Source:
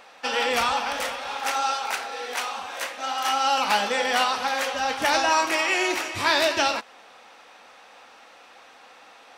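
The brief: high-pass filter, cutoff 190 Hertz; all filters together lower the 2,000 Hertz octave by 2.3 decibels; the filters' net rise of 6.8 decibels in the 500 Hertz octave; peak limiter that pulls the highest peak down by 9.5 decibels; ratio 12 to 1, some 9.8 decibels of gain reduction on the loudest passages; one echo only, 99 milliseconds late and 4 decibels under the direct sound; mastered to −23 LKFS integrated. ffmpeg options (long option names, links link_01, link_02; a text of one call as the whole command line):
ffmpeg -i in.wav -af "highpass=190,equalizer=frequency=500:width_type=o:gain=8.5,equalizer=frequency=2000:width_type=o:gain=-3.5,acompressor=threshold=-25dB:ratio=12,alimiter=limit=-24dB:level=0:latency=1,aecho=1:1:99:0.631,volume=8dB" out.wav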